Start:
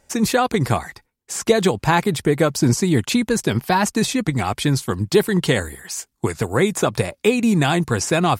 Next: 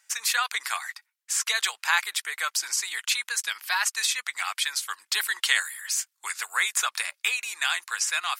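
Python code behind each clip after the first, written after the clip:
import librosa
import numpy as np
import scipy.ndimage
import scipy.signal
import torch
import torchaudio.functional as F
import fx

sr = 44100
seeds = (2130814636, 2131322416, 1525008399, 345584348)

y = scipy.signal.sosfilt(scipy.signal.butter(4, 1300.0, 'highpass', fs=sr, output='sos'), x)
y = fx.rider(y, sr, range_db=10, speed_s=2.0)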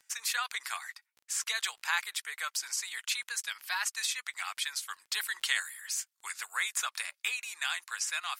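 y = fx.dmg_crackle(x, sr, seeds[0], per_s=11.0, level_db=-37.0)
y = fx.low_shelf(y, sr, hz=490.0, db=-5.5)
y = y * 10.0 ** (-7.0 / 20.0)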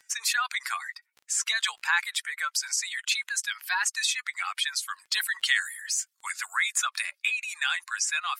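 y = fx.spec_expand(x, sr, power=1.6)
y = y * 10.0 ** (6.0 / 20.0)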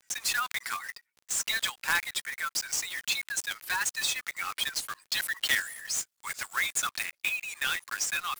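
y = fx.block_float(x, sr, bits=3)
y = y * 10.0 ** (-3.0 / 20.0)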